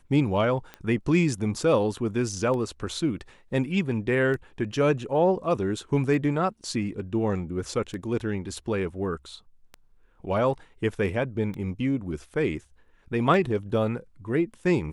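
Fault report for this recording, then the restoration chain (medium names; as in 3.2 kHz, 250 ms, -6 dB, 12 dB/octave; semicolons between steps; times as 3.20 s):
tick 33 1/3 rpm -23 dBFS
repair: de-click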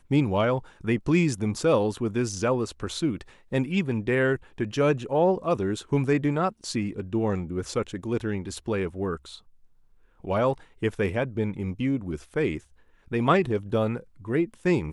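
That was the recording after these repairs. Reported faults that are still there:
nothing left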